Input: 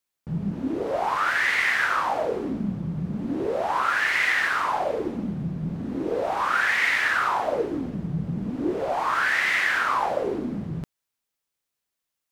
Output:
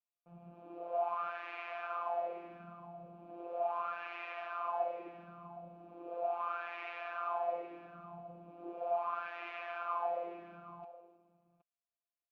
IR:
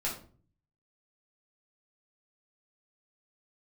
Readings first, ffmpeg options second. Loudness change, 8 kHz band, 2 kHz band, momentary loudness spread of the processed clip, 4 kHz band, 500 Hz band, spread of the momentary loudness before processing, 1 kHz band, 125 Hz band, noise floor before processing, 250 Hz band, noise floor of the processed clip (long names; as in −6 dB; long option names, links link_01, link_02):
−15.0 dB, below −35 dB, −25.0 dB, 16 LU, −25.0 dB, −11.0 dB, 10 LU, −12.0 dB, −28.0 dB, −84 dBFS, −25.5 dB, below −85 dBFS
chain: -filter_complex "[0:a]asplit=3[link_01][link_02][link_03];[link_01]bandpass=frequency=730:width_type=q:width=8,volume=0dB[link_04];[link_02]bandpass=frequency=1090:width_type=q:width=8,volume=-6dB[link_05];[link_03]bandpass=frequency=2440:width_type=q:width=8,volume=-9dB[link_06];[link_04][link_05][link_06]amix=inputs=3:normalize=0,equalizer=frequency=12000:width_type=o:width=1.4:gain=-13.5,afftfilt=real='hypot(re,im)*cos(PI*b)':imag='0':win_size=1024:overlap=0.75,highshelf=frequency=5800:gain=-7.5,asplit=2[link_07][link_08];[link_08]aecho=0:1:769:0.158[link_09];[link_07][link_09]amix=inputs=2:normalize=0"